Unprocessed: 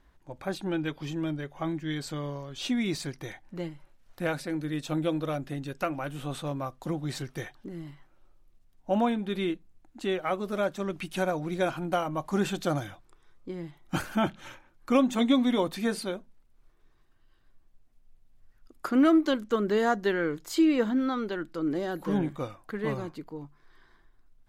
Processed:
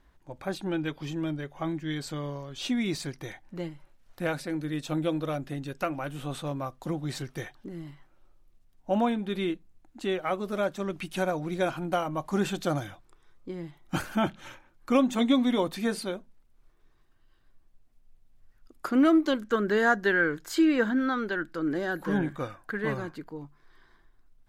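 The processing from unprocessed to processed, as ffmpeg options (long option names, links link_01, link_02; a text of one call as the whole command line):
ffmpeg -i in.wav -filter_complex "[0:a]asettb=1/sr,asplit=3[link_01][link_02][link_03];[link_01]atrim=end=19.424[link_04];[link_02]atrim=start=19.42:end=23.31,asetpts=PTS-STARTPTS,afade=type=in:duration=0.004:curve=qsin,afade=type=out:start_time=3.886:duration=0.004:curve=qsin,equalizer=frequency=1600:width_type=o:width=0.37:gain=11.5[link_05];[link_03]atrim=start=23.306[link_06];[link_04][link_05]acrossfade=duration=0.004:curve1=hsin:curve2=qsin[link_07];[link_07][link_06]acrossfade=duration=0.004:curve1=qsin:curve2=hsin" out.wav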